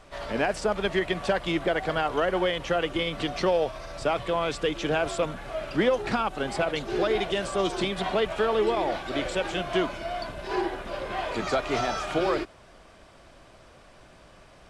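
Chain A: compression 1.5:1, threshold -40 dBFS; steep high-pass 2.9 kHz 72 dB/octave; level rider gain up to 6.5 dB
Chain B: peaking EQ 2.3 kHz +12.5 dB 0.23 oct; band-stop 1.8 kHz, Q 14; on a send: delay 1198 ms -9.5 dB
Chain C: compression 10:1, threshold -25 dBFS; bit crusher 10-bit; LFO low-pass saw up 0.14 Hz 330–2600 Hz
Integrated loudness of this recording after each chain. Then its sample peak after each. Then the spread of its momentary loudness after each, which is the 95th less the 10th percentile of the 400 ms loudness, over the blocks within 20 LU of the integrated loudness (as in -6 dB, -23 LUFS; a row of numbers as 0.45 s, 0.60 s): -38.5 LUFS, -26.5 LUFS, -28.0 LUFS; -20.5 dBFS, -11.5 dBFS, -12.0 dBFS; 20 LU, 8 LU, 6 LU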